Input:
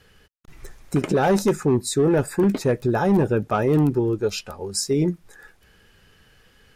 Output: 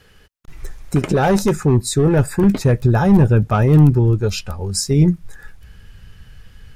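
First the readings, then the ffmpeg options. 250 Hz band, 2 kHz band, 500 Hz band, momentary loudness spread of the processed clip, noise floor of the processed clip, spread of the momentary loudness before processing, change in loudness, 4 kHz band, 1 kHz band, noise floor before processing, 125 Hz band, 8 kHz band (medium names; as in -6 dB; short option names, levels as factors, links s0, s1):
+5.0 dB, +3.5 dB, +1.5 dB, 10 LU, -50 dBFS, 7 LU, +6.0 dB, +4.0 dB, +3.0 dB, -57 dBFS, +11.0 dB, +4.0 dB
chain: -af "aeval=exprs='0.282*(cos(1*acos(clip(val(0)/0.282,-1,1)))-cos(1*PI/2))+0.00178*(cos(4*acos(clip(val(0)/0.282,-1,1)))-cos(4*PI/2))':c=same,asubboost=boost=6.5:cutoff=140,volume=1.58"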